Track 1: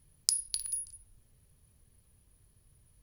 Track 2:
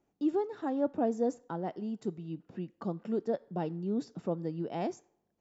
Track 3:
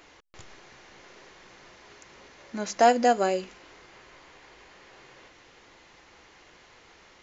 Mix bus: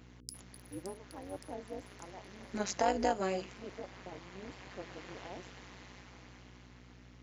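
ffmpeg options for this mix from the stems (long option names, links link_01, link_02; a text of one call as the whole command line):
ffmpeg -i stem1.wav -i stem2.wav -i stem3.wav -filter_complex "[0:a]aeval=exprs='sgn(val(0))*max(abs(val(0))-0.00944,0)':channel_layout=same,volume=-10dB,asplit=2[link_01][link_02];[link_02]volume=-10dB[link_03];[1:a]highpass=290,adelay=500,volume=-9dB[link_04];[2:a]dynaudnorm=framelen=270:gausssize=13:maxgain=16dB,alimiter=limit=-10.5dB:level=0:latency=1:release=273,aeval=exprs='val(0)+0.00631*(sin(2*PI*60*n/s)+sin(2*PI*2*60*n/s)/2+sin(2*PI*3*60*n/s)/3+sin(2*PI*4*60*n/s)/4+sin(2*PI*5*60*n/s)/5)':channel_layout=same,volume=-6dB,asplit=2[link_05][link_06];[link_06]apad=whole_len=133482[link_07];[link_01][link_07]sidechaincompress=threshold=-55dB:ratio=4:attack=29:release=116[link_08];[link_03]aecho=0:1:568|1136|1704|2272|2840|3408:1|0.43|0.185|0.0795|0.0342|0.0147[link_09];[link_08][link_04][link_05][link_09]amix=inputs=4:normalize=0,tremolo=f=190:d=0.889,highpass=56" out.wav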